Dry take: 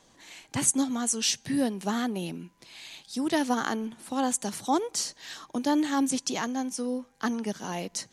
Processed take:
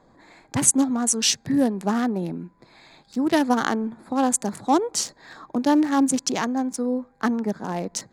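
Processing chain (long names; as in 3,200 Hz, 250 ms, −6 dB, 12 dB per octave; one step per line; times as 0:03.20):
adaptive Wiener filter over 15 samples
level +6.5 dB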